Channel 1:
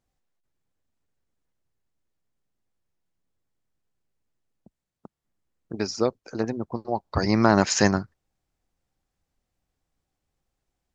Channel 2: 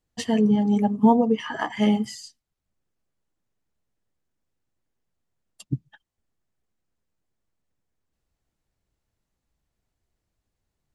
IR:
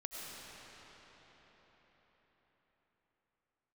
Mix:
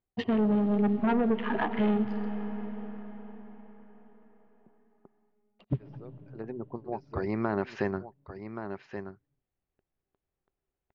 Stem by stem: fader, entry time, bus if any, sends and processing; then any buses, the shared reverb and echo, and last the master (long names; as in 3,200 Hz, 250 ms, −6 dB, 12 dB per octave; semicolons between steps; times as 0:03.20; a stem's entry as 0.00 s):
−9.0 dB, 0.00 s, no send, echo send −12 dB, automatic ducking −22 dB, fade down 0.65 s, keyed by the second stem
+2.5 dB, 0.00 s, send −9.5 dB, no echo send, adaptive Wiener filter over 25 samples; log-companded quantiser 6 bits; soft clipping −21.5 dBFS, distortion −8 dB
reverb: on, RT60 5.2 s, pre-delay 60 ms
echo: single-tap delay 1,126 ms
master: low-pass filter 3,000 Hz 24 dB per octave; parametric band 390 Hz +9.5 dB 0.22 octaves; downward compressor 2 to 1, threshold −27 dBFS, peak gain reduction 6 dB